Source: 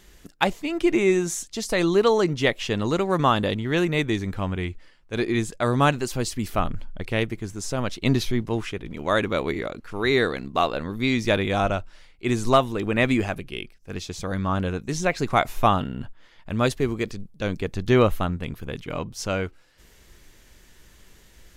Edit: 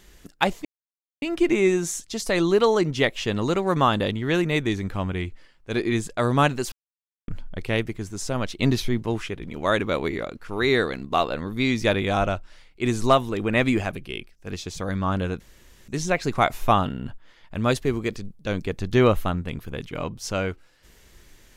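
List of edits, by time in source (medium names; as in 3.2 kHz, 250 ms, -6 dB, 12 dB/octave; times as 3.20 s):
0.65 s: insert silence 0.57 s
6.15–6.71 s: mute
14.83 s: insert room tone 0.48 s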